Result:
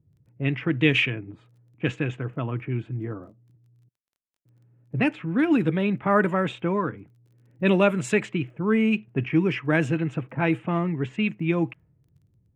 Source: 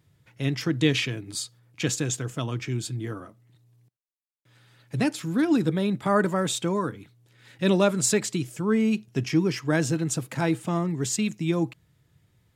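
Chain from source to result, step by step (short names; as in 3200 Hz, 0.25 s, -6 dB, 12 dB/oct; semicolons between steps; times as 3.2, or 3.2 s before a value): low-pass opened by the level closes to 310 Hz, open at -18 dBFS; resonant high shelf 3500 Hz -10 dB, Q 3; crackle 19/s -56 dBFS; gain +1 dB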